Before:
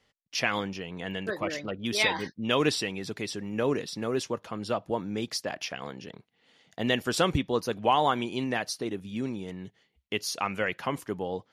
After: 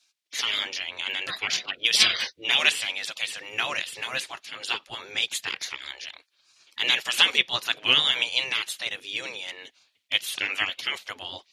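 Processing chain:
gate on every frequency bin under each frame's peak −15 dB weak
meter weighting curve D
level +6 dB

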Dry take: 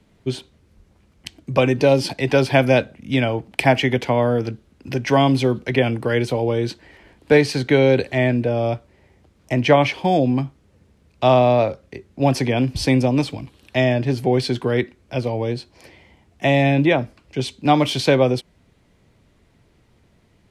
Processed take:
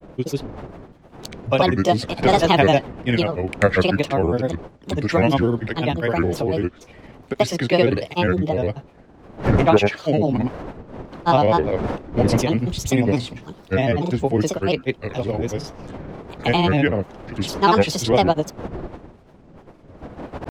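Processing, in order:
wind on the microphone 470 Hz −32 dBFS
granular cloud, pitch spread up and down by 7 semitones

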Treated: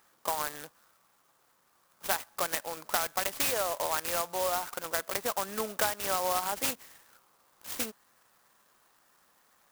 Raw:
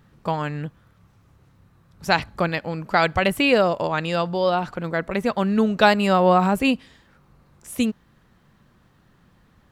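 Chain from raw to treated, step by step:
high-pass filter 800 Hz 12 dB per octave
downward compressor 6 to 1, threshold −26 dBFS, peak gain reduction 13 dB
converter with an unsteady clock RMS 0.1 ms

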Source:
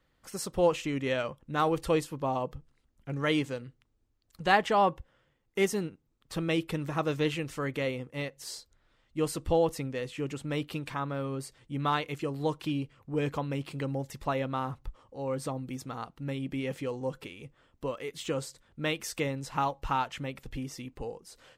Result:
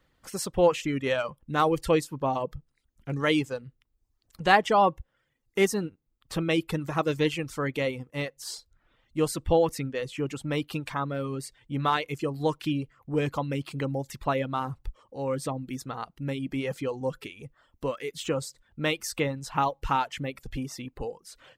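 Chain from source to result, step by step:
reverb reduction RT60 0.64 s
level +4 dB

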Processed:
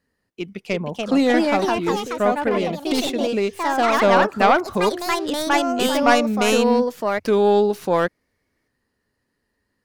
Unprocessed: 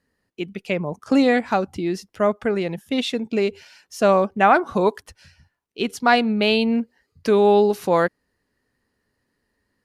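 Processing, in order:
stylus tracing distortion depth 0.11 ms
delay with pitch and tempo change per echo 401 ms, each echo +3 semitones, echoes 3
level −1 dB

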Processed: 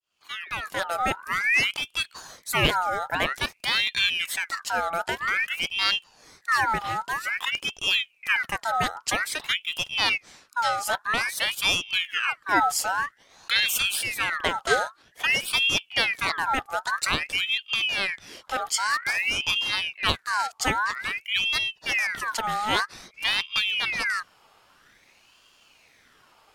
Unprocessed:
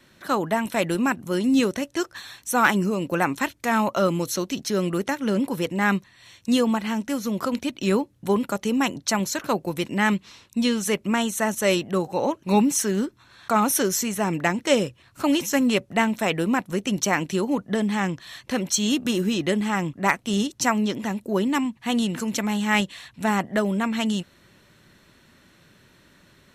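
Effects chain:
fade in at the beginning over 1.07 s
ring modulator whose carrier an LFO sweeps 2,000 Hz, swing 50%, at 0.51 Hz

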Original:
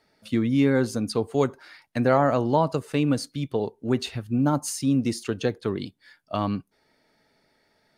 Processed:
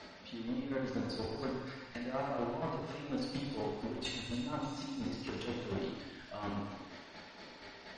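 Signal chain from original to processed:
converter with a step at zero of −33.5 dBFS
low-pass filter 5,000 Hz 24 dB per octave
parametric band 86 Hz −2.5 dB 0.77 octaves
output level in coarse steps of 17 dB
square-wave tremolo 4.2 Hz, depth 65%, duty 25%
asymmetric clip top −41 dBFS, bottom −25.5 dBFS
delay with a high-pass on its return 290 ms, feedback 57%, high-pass 1,700 Hz, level −10.5 dB
reverb whose tail is shaped and stops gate 470 ms falling, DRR −4 dB
level −1.5 dB
MP3 40 kbit/s 48,000 Hz

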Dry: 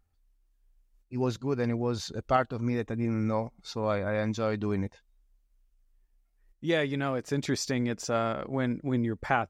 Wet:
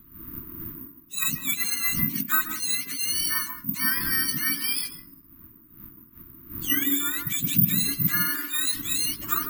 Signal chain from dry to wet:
frequency axis turned over on the octave scale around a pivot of 990 Hz
wind on the microphone 440 Hz −48 dBFS
Chebyshev band-stop filter 330–1,100 Hz, order 3
hum removal 341.5 Hz, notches 36
on a send at −7.5 dB: convolution reverb RT60 0.25 s, pre-delay 133 ms
on the sum: bad sample-rate conversion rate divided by 3×, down none, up zero stuff
level +2.5 dB

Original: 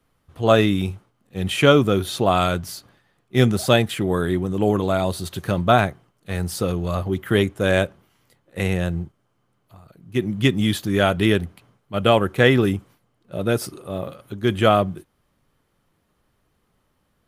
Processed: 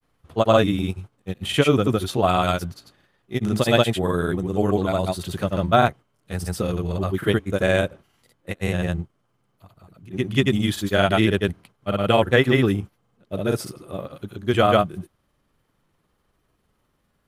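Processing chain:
granular cloud, spray 100 ms, pitch spread up and down by 0 semitones

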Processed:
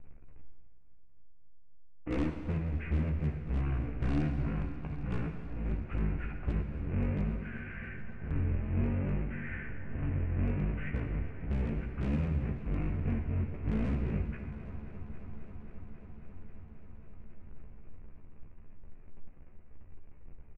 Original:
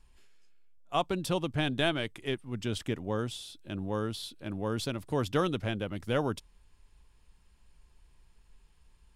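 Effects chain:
each half-wave held at its own peak
Butterworth low-pass 5,900 Hz 72 dB per octave
parametric band 3,000 Hz −8 dB 2.5 octaves
comb filter 6.1 ms, depth 74%
downward compressor 3 to 1, threshold −38 dBFS, peak gain reduction 16 dB
wave folding −30 dBFS
echo machine with several playback heads 120 ms, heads all three, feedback 72%, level −21.5 dB
change of speed 0.445×
dynamic equaliser 900 Hz, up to −6 dB, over −58 dBFS, Q 1
on a send at −5 dB: convolution reverb RT60 1.8 s, pre-delay 6 ms
on the sum: level +5 dB

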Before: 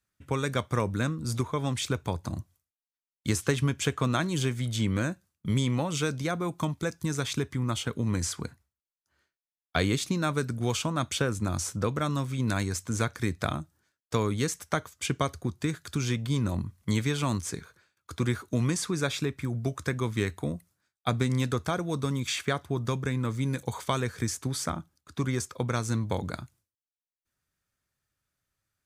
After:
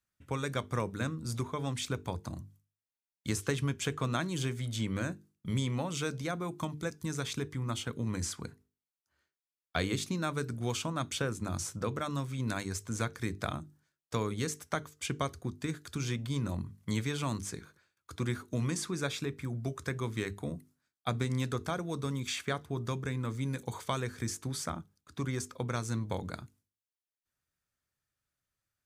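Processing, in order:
mains-hum notches 50/100/150/200/250/300/350/400/450 Hz
level −5 dB

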